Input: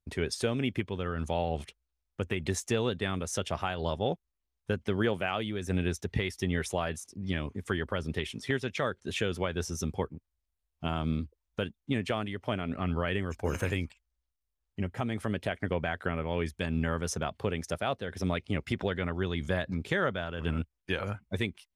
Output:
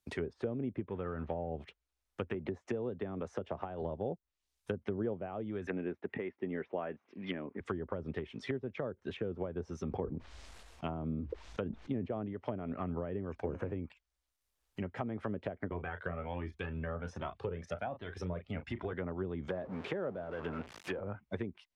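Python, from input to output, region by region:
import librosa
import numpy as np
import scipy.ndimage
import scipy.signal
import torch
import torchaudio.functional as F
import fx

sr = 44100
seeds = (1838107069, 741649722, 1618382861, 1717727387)

y = fx.chain(x, sr, fx.zero_step(step_db=-44.0),
    fx.air_absorb(metres=390.0), at=(0.88, 1.49))
y = fx.chain(y, sr, fx.low_shelf(hz=150.0, db=-6.0),
    fx.band_squash(depth_pct=70), at=(2.34, 3.82))
y = fx.chain(y, sr, fx.cheby1_bandpass(low_hz=240.0, high_hz=2700.0, order=2),
    fx.peak_eq(hz=2300.0, db=12.5, octaves=2.4), at=(5.67, 7.6))
y = fx.chain(y, sr, fx.lowpass(hz=7500.0, slope=12),
    fx.sustainer(db_per_s=34.0), at=(9.82, 12.33))
y = fx.chain(y, sr, fx.low_shelf(hz=81.0, db=10.5),
    fx.doubler(ms=34.0, db=-11.0),
    fx.comb_cascade(direction='rising', hz=1.3), at=(15.71, 18.93))
y = fx.chain(y, sr, fx.zero_step(step_db=-33.5),
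    fx.highpass(hz=300.0, slope=6), at=(19.48, 21.0))
y = fx.low_shelf(y, sr, hz=180.0, db=-9.5)
y = fx.env_lowpass_down(y, sr, base_hz=540.0, full_db=-29.5)
y = fx.band_squash(y, sr, depth_pct=40)
y = y * 10.0 ** (-2.0 / 20.0)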